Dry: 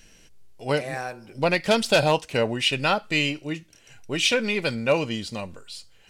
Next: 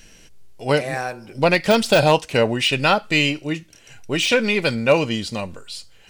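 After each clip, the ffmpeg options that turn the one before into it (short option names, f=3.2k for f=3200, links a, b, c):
-af "deesser=0.55,volume=5.5dB"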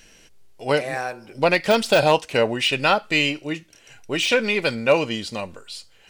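-af "bass=f=250:g=-6,treble=f=4k:g=-2,volume=-1dB"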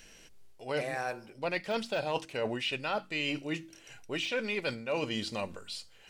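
-filter_complex "[0:a]acrossover=split=5400[a][b];[b]acompressor=threshold=-40dB:ratio=4:attack=1:release=60[c];[a][c]amix=inputs=2:normalize=0,bandreject=f=46.54:t=h:w=4,bandreject=f=93.08:t=h:w=4,bandreject=f=139.62:t=h:w=4,bandreject=f=186.16:t=h:w=4,bandreject=f=232.7:t=h:w=4,bandreject=f=279.24:t=h:w=4,bandreject=f=325.78:t=h:w=4,areverse,acompressor=threshold=-26dB:ratio=6,areverse,volume=-4dB"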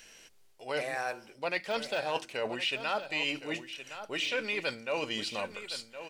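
-af "lowshelf=f=290:g=-12,aecho=1:1:1066:0.266,volume=2dB"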